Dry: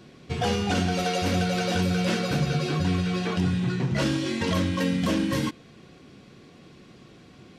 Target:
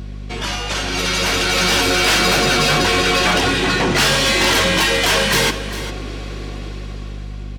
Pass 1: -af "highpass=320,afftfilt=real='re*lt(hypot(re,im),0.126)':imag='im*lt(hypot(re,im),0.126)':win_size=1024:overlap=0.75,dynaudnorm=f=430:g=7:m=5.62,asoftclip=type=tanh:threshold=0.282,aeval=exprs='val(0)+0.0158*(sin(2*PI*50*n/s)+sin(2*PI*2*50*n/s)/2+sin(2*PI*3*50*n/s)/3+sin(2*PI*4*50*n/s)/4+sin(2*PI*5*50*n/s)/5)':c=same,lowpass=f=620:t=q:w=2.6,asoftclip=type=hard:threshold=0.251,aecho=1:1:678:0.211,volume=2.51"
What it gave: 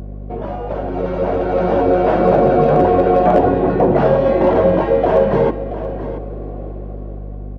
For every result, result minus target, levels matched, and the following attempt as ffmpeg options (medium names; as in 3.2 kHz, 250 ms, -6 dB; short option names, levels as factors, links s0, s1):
echo 276 ms late; 500 Hz band +8.5 dB; saturation: distortion -10 dB
-af "highpass=320,afftfilt=real='re*lt(hypot(re,im),0.126)':imag='im*lt(hypot(re,im),0.126)':win_size=1024:overlap=0.75,dynaudnorm=f=430:g=7:m=5.62,asoftclip=type=tanh:threshold=0.282,aeval=exprs='val(0)+0.0158*(sin(2*PI*50*n/s)+sin(2*PI*2*50*n/s)/2+sin(2*PI*3*50*n/s)/3+sin(2*PI*4*50*n/s)/4+sin(2*PI*5*50*n/s)/5)':c=same,lowpass=f=620:t=q:w=2.6,asoftclip=type=hard:threshold=0.251,aecho=1:1:402:0.211,volume=2.51"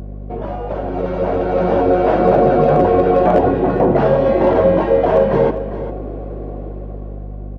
500 Hz band +8.5 dB; saturation: distortion -10 dB
-af "highpass=320,afftfilt=real='re*lt(hypot(re,im),0.126)':imag='im*lt(hypot(re,im),0.126)':win_size=1024:overlap=0.75,dynaudnorm=f=430:g=7:m=5.62,asoftclip=type=tanh:threshold=0.282,aeval=exprs='val(0)+0.0158*(sin(2*PI*50*n/s)+sin(2*PI*2*50*n/s)/2+sin(2*PI*3*50*n/s)/3+sin(2*PI*4*50*n/s)/4+sin(2*PI*5*50*n/s)/5)':c=same,asoftclip=type=hard:threshold=0.251,aecho=1:1:402:0.211,volume=2.51"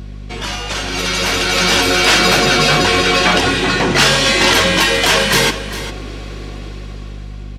saturation: distortion -10 dB
-af "highpass=320,afftfilt=real='re*lt(hypot(re,im),0.126)':imag='im*lt(hypot(re,im),0.126)':win_size=1024:overlap=0.75,dynaudnorm=f=430:g=7:m=5.62,asoftclip=type=tanh:threshold=0.106,aeval=exprs='val(0)+0.0158*(sin(2*PI*50*n/s)+sin(2*PI*2*50*n/s)/2+sin(2*PI*3*50*n/s)/3+sin(2*PI*4*50*n/s)/4+sin(2*PI*5*50*n/s)/5)':c=same,asoftclip=type=hard:threshold=0.251,aecho=1:1:402:0.211,volume=2.51"